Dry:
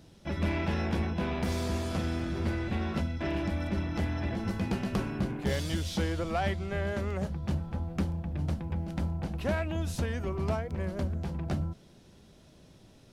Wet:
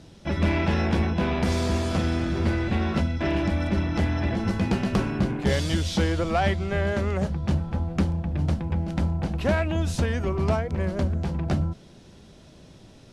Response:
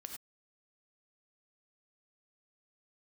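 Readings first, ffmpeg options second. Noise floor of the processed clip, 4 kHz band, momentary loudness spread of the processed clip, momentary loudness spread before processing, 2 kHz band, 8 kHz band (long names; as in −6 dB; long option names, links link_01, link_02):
−50 dBFS, +7.0 dB, 3 LU, 3 LU, +7.0 dB, +6.0 dB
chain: -af "lowpass=9400,volume=7dB"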